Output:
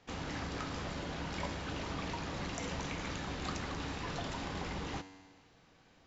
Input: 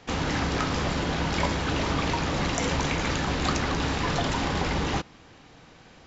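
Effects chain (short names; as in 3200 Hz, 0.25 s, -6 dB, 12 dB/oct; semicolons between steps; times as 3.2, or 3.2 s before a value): resonator 95 Hz, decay 1.6 s, harmonics all, mix 70%; gain -3.5 dB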